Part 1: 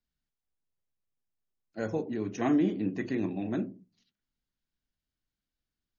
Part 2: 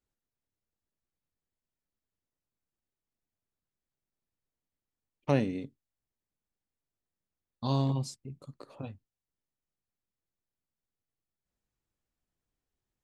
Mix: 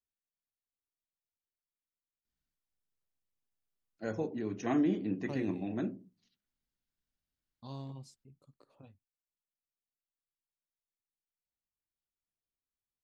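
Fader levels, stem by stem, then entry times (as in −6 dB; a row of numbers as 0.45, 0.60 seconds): −3.5, −15.5 decibels; 2.25, 0.00 seconds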